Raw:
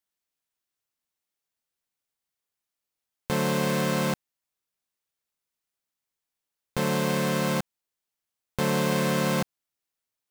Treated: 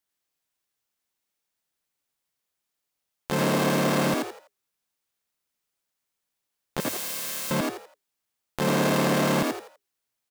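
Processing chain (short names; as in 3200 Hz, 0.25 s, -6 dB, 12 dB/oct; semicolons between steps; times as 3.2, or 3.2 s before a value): 6.8–7.51 pre-emphasis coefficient 0.97; frequency-shifting echo 83 ms, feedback 31%, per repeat +99 Hz, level -3.5 dB; core saturation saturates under 580 Hz; gain +2.5 dB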